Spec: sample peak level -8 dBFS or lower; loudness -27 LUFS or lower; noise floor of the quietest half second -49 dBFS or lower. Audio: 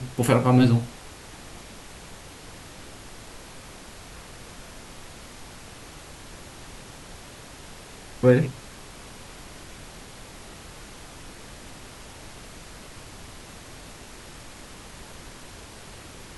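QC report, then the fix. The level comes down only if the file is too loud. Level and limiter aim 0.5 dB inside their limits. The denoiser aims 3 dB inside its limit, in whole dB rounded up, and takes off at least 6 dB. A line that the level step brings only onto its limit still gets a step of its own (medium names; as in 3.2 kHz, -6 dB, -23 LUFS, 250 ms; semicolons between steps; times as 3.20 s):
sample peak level -4.5 dBFS: fail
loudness -21.0 LUFS: fail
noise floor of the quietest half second -44 dBFS: fail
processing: trim -6.5 dB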